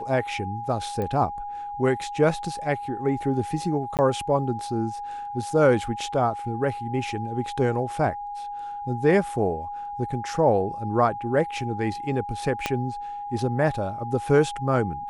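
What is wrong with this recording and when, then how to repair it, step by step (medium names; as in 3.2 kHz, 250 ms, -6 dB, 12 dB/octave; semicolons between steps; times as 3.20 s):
whine 820 Hz -31 dBFS
1.02 s: pop -18 dBFS
3.97–3.99 s: dropout 18 ms
12.66 s: pop -9 dBFS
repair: de-click; band-stop 820 Hz, Q 30; interpolate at 3.97 s, 18 ms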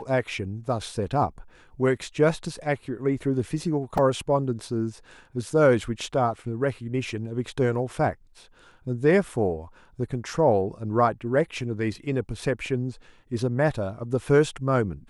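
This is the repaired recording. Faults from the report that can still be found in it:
12.66 s: pop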